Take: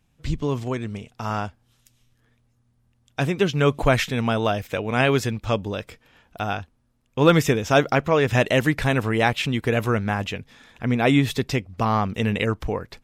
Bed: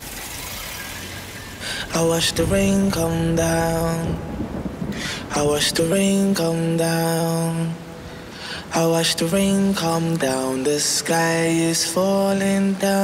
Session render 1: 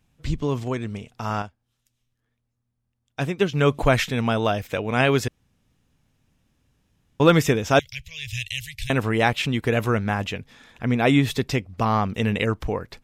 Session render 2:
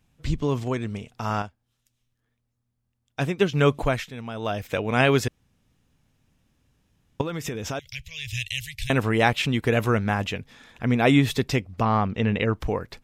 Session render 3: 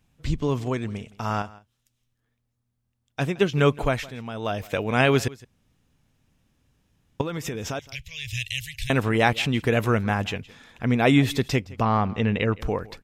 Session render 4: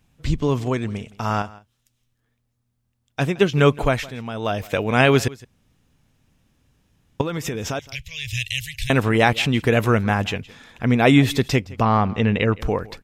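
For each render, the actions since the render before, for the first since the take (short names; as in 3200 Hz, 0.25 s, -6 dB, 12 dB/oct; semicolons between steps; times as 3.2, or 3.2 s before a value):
1.42–3.52 upward expander, over -40 dBFS; 5.28–7.2 room tone; 7.79–8.9 inverse Chebyshev band-stop 180–1400 Hz
3.65–4.74 dip -12.5 dB, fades 0.41 s; 7.21–8.34 compressor, threshold -27 dBFS; 11.81–12.54 air absorption 170 m
echo 0.166 s -21 dB
gain +4 dB; limiter -2 dBFS, peak gain reduction 1.5 dB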